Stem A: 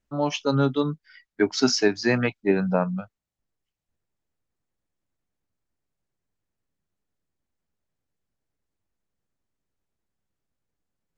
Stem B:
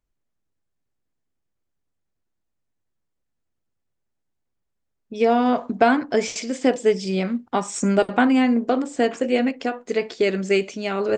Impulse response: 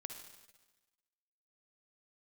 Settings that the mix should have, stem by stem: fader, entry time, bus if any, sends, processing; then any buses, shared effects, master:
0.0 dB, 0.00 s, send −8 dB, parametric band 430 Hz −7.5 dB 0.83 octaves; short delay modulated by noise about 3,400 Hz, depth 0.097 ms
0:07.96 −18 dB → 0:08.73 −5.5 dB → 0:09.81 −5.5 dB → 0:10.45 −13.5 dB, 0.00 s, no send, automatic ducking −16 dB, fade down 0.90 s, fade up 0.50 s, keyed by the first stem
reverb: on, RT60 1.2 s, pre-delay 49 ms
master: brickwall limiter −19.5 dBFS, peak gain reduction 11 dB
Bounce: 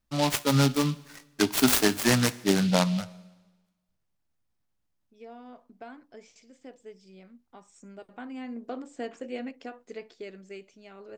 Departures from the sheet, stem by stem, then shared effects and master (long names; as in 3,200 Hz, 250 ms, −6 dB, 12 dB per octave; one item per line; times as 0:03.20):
stem B −18.0 dB → −28.0 dB
master: missing brickwall limiter −19.5 dBFS, peak gain reduction 11 dB